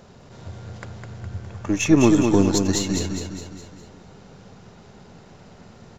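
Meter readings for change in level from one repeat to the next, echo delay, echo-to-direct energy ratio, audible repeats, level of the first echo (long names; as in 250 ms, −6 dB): −6.0 dB, 206 ms, −3.5 dB, 5, −5.0 dB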